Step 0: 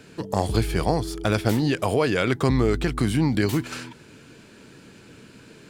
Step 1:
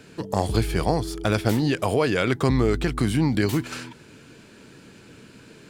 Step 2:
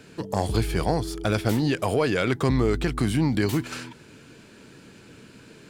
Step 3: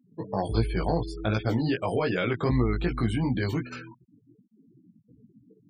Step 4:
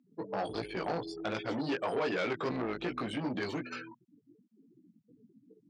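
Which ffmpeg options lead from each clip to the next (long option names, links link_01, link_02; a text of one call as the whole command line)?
ffmpeg -i in.wav -af anull out.wav
ffmpeg -i in.wav -af "acontrast=59,volume=-7dB" out.wav
ffmpeg -i in.wav -af "afftfilt=real='re*gte(hypot(re,im),0.0251)':imag='im*gte(hypot(re,im),0.0251)':win_size=1024:overlap=0.75,flanger=delay=16:depth=2.4:speed=2.7" out.wav
ffmpeg -i in.wav -af "aeval=exprs='(tanh(20*val(0)+0.25)-tanh(0.25))/20':channel_layout=same,highpass=260,lowpass=6800" out.wav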